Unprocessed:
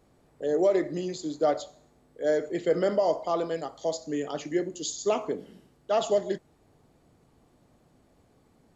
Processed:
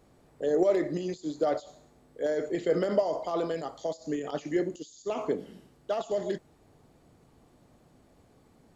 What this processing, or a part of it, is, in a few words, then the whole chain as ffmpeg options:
de-esser from a sidechain: -filter_complex "[0:a]asplit=2[a][b];[b]highpass=5.9k,apad=whole_len=386155[c];[a][c]sidechaincompress=threshold=-52dB:ratio=16:attack=0.8:release=64,volume=2dB"

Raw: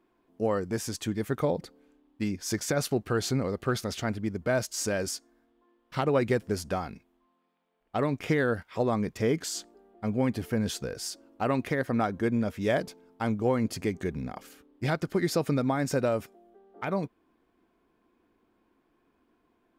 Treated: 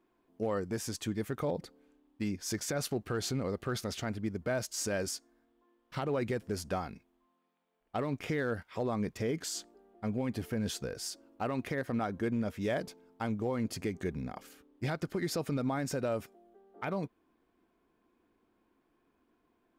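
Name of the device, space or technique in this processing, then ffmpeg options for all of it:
limiter into clipper: -af "alimiter=limit=-20dB:level=0:latency=1:release=64,asoftclip=type=hard:threshold=-21dB,volume=-3.5dB"

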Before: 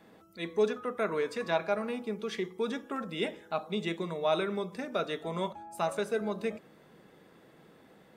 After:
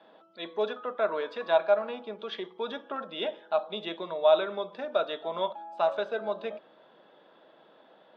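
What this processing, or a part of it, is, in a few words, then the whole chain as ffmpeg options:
phone earpiece: -af "highpass=350,equalizer=f=430:t=q:w=4:g=-3,equalizer=f=610:t=q:w=4:g=9,equalizer=f=920:t=q:w=4:g=5,equalizer=f=1.5k:t=q:w=4:g=3,equalizer=f=2.1k:t=q:w=4:g=-8,equalizer=f=3.4k:t=q:w=4:g=7,lowpass=f=3.9k:w=0.5412,lowpass=f=3.9k:w=1.3066"

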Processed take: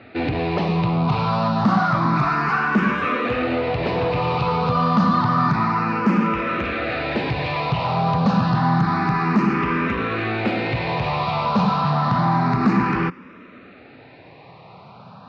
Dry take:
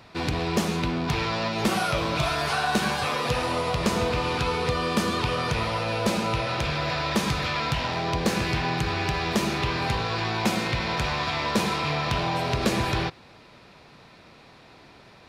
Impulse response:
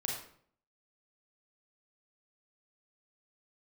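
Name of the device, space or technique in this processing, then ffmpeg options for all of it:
barber-pole phaser into a guitar amplifier: -filter_complex "[0:a]asplit=2[a][b];[b]afreqshift=0.29[c];[a][c]amix=inputs=2:normalize=1,asoftclip=type=tanh:threshold=-25dB,highpass=95,equalizer=f=120:t=q:w=4:g=5,equalizer=f=180:t=q:w=4:g=10,equalizer=f=260:t=q:w=4:g=9,equalizer=f=820:t=q:w=4:g=4,equalizer=f=1.2k:t=q:w=4:g=8,equalizer=f=3.3k:t=q:w=4:g=-8,lowpass=f=3.8k:w=0.5412,lowpass=f=3.8k:w=1.3066,volume=7.5dB"

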